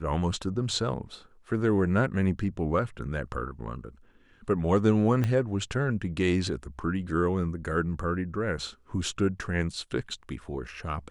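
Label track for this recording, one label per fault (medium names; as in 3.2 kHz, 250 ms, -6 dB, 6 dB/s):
5.240000	5.240000	pop -16 dBFS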